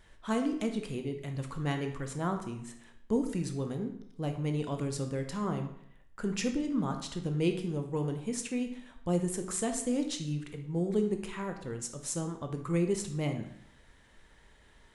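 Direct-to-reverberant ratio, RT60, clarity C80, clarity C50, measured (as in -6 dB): 5.0 dB, 0.70 s, 11.5 dB, 8.5 dB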